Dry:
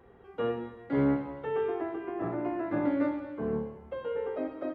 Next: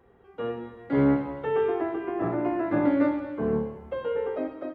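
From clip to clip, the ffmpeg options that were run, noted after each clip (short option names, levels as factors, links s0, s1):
-af "dynaudnorm=f=310:g=5:m=2.51,volume=0.75"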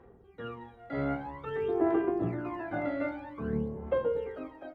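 -af "aphaser=in_gain=1:out_gain=1:delay=1.5:decay=0.76:speed=0.51:type=sinusoidal,volume=0.398"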